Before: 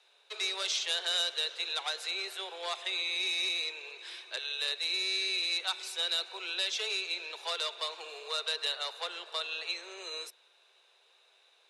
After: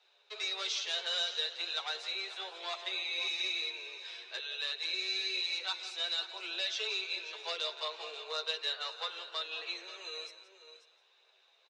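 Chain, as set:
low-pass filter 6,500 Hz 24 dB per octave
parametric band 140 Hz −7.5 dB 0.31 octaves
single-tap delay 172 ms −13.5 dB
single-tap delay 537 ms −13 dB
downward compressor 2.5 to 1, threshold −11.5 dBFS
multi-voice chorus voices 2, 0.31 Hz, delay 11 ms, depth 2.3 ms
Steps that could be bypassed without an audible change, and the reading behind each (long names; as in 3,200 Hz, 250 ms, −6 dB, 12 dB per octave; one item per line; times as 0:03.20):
parametric band 140 Hz: nothing at its input below 320 Hz
downward compressor, threshold −11.5 dBFS: peak of its input −18.0 dBFS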